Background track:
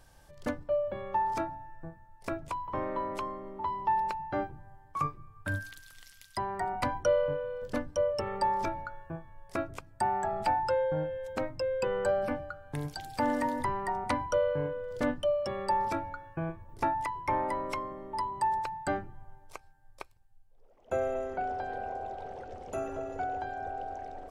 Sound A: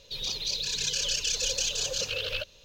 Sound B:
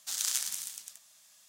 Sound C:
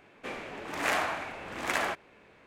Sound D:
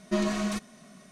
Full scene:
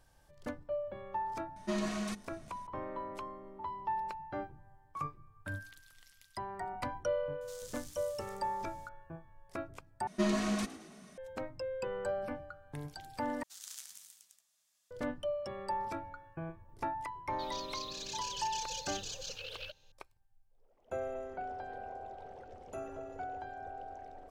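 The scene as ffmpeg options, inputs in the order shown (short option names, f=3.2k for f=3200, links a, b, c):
-filter_complex "[4:a]asplit=2[a][b];[2:a]asplit=2[c][d];[0:a]volume=-7.5dB[e];[a]bandreject=f=50:t=h:w=6,bandreject=f=100:t=h:w=6,bandreject=f=150:t=h:w=6,bandreject=f=200:t=h:w=6,bandreject=f=250:t=h:w=6,bandreject=f=300:t=h:w=6,bandreject=f=350:t=h:w=6,bandreject=f=400:t=h:w=6,bandreject=f=450:t=h:w=6,bandreject=f=500:t=h:w=6[f];[c]acompressor=threshold=-49dB:ratio=2.5:attack=1.7:release=27:knee=1:detection=peak[g];[b]asplit=5[h][i][j][k][l];[i]adelay=110,afreqshift=58,volume=-16dB[m];[j]adelay=220,afreqshift=116,volume=-22.7dB[n];[k]adelay=330,afreqshift=174,volume=-29.5dB[o];[l]adelay=440,afreqshift=232,volume=-36.2dB[p];[h][m][n][o][p]amix=inputs=5:normalize=0[q];[e]asplit=3[r][s][t];[r]atrim=end=10.074[u];[q]atrim=end=1.11,asetpts=PTS-STARTPTS,volume=-3.5dB[v];[s]atrim=start=11.176:end=13.434[w];[d]atrim=end=1.48,asetpts=PTS-STARTPTS,volume=-16.5dB[x];[t]atrim=start=14.906[y];[f]atrim=end=1.11,asetpts=PTS-STARTPTS,volume=-6.5dB,afade=t=in:d=0.004:c=hsin,afade=t=out:st=1.106:d=0.004:c=hsin,adelay=1560[z];[g]atrim=end=1.48,asetpts=PTS-STARTPTS,volume=-7dB,afade=t=in:d=0.004:c=hsin,afade=t=out:st=1.476:d=0.004:c=hsin,adelay=7410[aa];[1:a]atrim=end=2.64,asetpts=PTS-STARTPTS,volume=-13dB,afade=t=in:d=0.004:c=hsin,afade=t=out:st=2.636:d=0.004:c=hsin,adelay=17280[ab];[u][v]acrossfade=d=0.004:c1=hsin:c2=hsin[ac];[ac][w]acrossfade=d=0.004:c1=hsin:c2=hsin[ad];[ad][x]acrossfade=d=0.004:c1=hsin:c2=hsin[ae];[ae][y]acrossfade=d=0.004:c1=hsin:c2=hsin[af];[af][z][aa][ab]amix=inputs=4:normalize=0"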